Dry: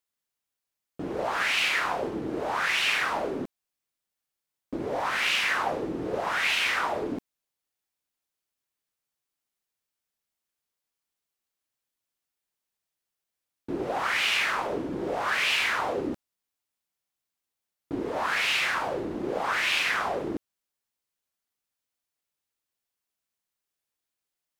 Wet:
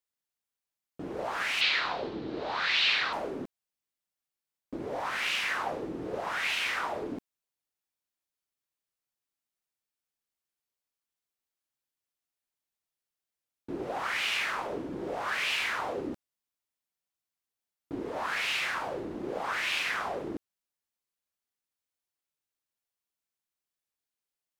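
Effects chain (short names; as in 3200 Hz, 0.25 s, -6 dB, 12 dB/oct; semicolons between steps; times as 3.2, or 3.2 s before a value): 1.61–3.13 synth low-pass 4100 Hz, resonance Q 3.8; gain -5 dB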